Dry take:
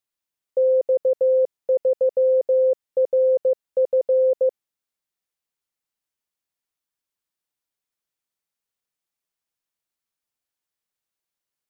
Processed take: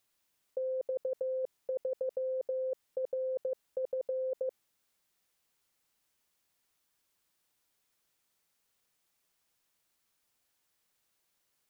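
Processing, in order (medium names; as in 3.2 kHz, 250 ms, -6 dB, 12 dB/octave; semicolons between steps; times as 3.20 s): compressor with a negative ratio -30 dBFS, ratio -1; trim -3.5 dB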